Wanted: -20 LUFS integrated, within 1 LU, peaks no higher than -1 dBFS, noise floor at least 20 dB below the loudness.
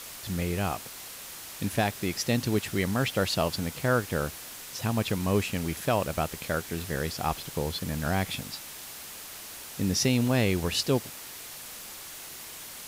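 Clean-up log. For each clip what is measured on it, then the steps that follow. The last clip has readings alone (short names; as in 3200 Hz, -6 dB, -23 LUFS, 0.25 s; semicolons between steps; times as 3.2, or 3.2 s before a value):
noise floor -43 dBFS; noise floor target -50 dBFS; loudness -30.0 LUFS; peak -12.5 dBFS; loudness target -20.0 LUFS
-> denoiser 7 dB, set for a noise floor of -43 dBFS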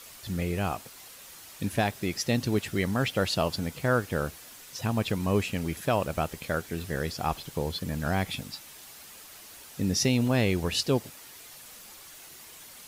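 noise floor -48 dBFS; noise floor target -49 dBFS
-> denoiser 6 dB, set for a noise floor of -48 dBFS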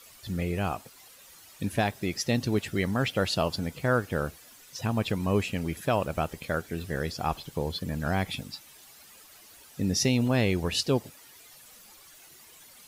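noise floor -53 dBFS; loudness -29.0 LUFS; peak -13.0 dBFS; loudness target -20.0 LUFS
-> gain +9 dB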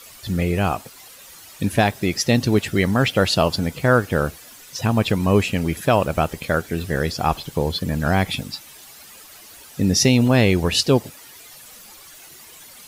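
loudness -20.0 LUFS; peak -4.0 dBFS; noise floor -44 dBFS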